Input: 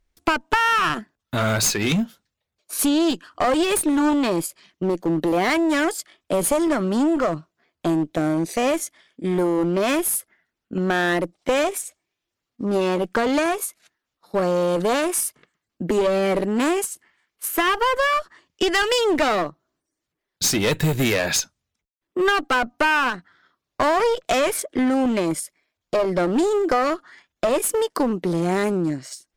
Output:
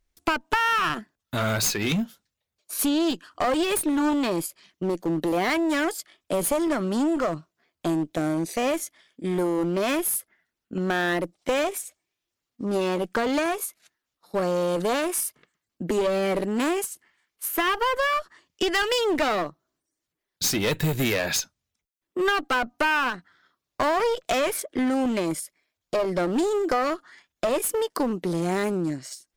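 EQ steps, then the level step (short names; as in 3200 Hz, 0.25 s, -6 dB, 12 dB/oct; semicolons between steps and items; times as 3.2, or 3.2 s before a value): dynamic EQ 8300 Hz, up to -6 dB, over -39 dBFS, Q 0.81; high shelf 4500 Hz +6 dB; -4.0 dB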